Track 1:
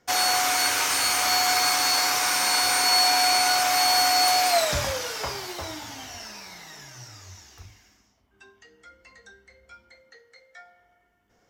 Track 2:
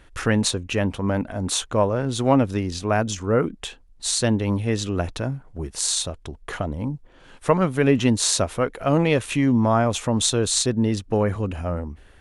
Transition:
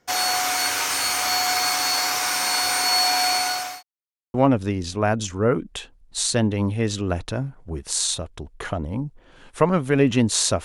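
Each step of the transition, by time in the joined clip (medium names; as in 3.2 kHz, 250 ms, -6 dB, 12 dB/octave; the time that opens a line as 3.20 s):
track 1
3.17–3.83 s: fade out equal-power
3.83–4.34 s: mute
4.34 s: go over to track 2 from 2.22 s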